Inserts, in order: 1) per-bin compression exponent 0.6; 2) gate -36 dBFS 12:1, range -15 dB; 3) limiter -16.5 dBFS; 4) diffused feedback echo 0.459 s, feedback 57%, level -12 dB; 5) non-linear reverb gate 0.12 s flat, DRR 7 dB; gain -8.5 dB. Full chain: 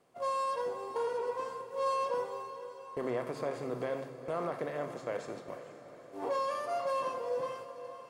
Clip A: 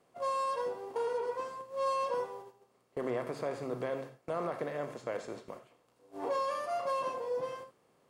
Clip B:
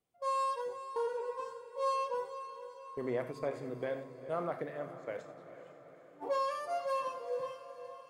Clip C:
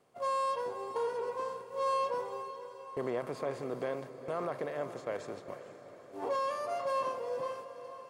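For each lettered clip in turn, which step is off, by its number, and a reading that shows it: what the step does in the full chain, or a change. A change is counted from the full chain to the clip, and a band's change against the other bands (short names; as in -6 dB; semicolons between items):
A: 4, echo-to-direct -5.0 dB to -7.0 dB; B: 1, momentary loudness spread change +3 LU; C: 5, echo-to-direct -5.0 dB to -10.5 dB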